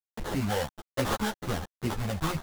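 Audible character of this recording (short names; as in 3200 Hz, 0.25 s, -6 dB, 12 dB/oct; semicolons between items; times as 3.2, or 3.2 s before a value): a quantiser's noise floor 6-bit, dither none; phasing stages 6, 1.3 Hz, lowest notch 320–2600 Hz; aliases and images of a low sample rate 2400 Hz, jitter 20%; a shimmering, thickened sound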